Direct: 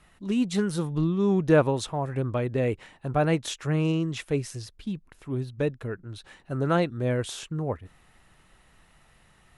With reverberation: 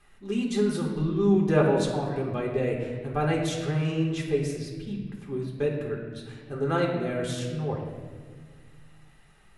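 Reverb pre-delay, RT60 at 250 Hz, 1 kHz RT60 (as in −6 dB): 5 ms, 2.5 s, 1.4 s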